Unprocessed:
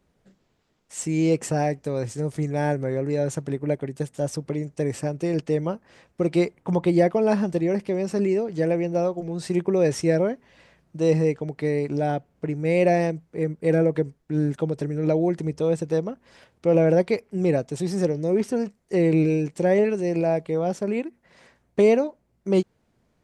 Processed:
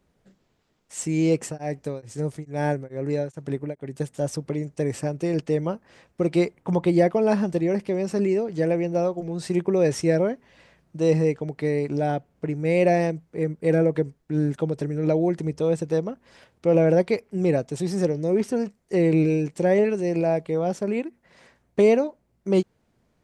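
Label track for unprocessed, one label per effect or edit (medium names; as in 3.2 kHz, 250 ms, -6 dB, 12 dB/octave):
1.370000	3.940000	tremolo of two beating tones nulls at 2.3 Hz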